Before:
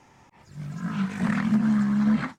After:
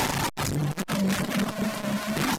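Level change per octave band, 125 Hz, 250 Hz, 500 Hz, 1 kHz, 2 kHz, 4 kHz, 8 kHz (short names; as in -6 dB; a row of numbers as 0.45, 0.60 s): +1.0 dB, -5.0 dB, +11.0 dB, +7.0 dB, +4.5 dB, +14.5 dB, n/a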